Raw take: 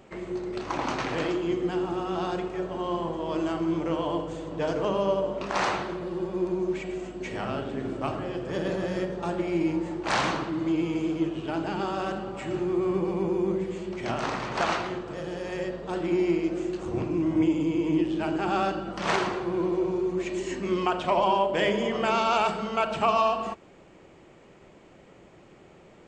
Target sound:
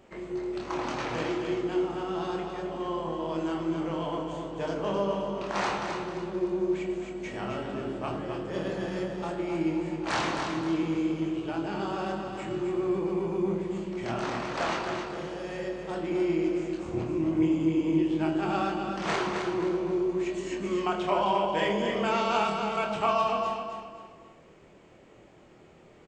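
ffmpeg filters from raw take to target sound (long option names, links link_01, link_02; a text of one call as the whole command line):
ffmpeg -i in.wav -filter_complex "[0:a]asplit=2[link_01][link_02];[link_02]adelay=25,volume=-5dB[link_03];[link_01][link_03]amix=inputs=2:normalize=0,asplit=2[link_04][link_05];[link_05]aecho=0:1:264|528|792|1056:0.501|0.18|0.065|0.0234[link_06];[link_04][link_06]amix=inputs=2:normalize=0,volume=-4.5dB" out.wav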